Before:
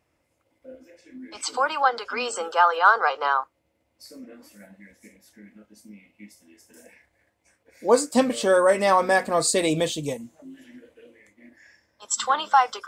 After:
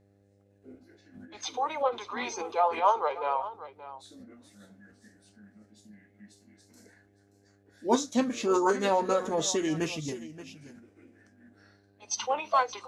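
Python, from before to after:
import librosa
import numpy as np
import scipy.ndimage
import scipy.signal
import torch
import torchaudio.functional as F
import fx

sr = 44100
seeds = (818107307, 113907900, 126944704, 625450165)

y = fx.dmg_buzz(x, sr, base_hz=100.0, harmonics=8, level_db=-58.0, tilt_db=-3, odd_only=False)
y = fx.echo_multitap(y, sr, ms=(47, 577), db=(-19.5, -15.0))
y = fx.formant_shift(y, sr, semitones=-4)
y = y * librosa.db_to_amplitude(-6.5)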